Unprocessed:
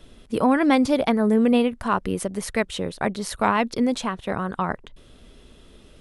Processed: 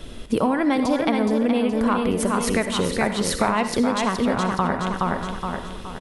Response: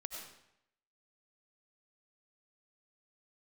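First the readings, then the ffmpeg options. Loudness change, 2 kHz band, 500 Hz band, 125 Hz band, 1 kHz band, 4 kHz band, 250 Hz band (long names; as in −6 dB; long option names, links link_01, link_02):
+0.5 dB, +1.5 dB, +1.0 dB, +4.0 dB, +1.5 dB, +4.0 dB, +0.5 dB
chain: -filter_complex "[0:a]asplit=2[link_01][link_02];[link_02]aecho=0:1:420|840|1260|1680|2100:0.501|0.195|0.0762|0.0297|0.0116[link_03];[link_01][link_03]amix=inputs=2:normalize=0,acompressor=threshold=-29dB:ratio=6,asplit=2[link_04][link_05];[1:a]atrim=start_sample=2205,asetrate=66150,aresample=44100[link_06];[link_05][link_06]afir=irnorm=-1:irlink=0,volume=3.5dB[link_07];[link_04][link_07]amix=inputs=2:normalize=0,volume=6.5dB"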